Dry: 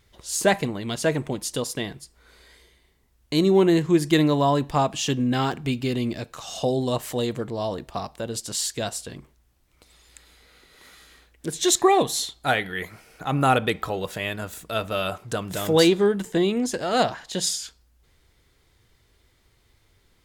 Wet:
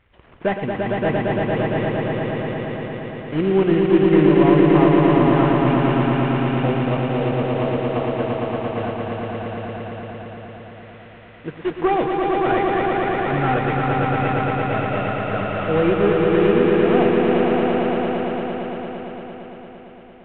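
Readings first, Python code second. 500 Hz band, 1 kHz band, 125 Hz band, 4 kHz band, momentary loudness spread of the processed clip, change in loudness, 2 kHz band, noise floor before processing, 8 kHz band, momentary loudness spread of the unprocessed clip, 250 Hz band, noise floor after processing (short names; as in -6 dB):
+6.0 dB, +5.0 dB, +7.0 dB, -6.0 dB, 16 LU, +4.5 dB, +4.5 dB, -63 dBFS, under -40 dB, 13 LU, +6.5 dB, -42 dBFS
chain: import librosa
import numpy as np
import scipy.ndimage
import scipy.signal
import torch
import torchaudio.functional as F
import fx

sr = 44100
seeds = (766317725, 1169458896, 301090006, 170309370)

y = fx.cvsd(x, sr, bps=16000)
y = fx.echo_swell(y, sr, ms=114, loudest=5, wet_db=-3.5)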